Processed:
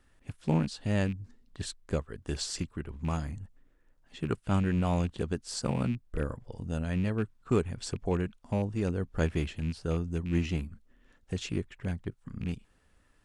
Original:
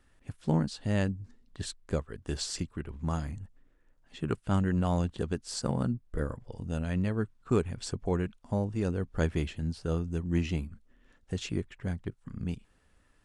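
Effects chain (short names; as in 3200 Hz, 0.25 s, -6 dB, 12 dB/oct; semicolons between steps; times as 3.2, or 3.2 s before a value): rattling part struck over -31 dBFS, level -36 dBFS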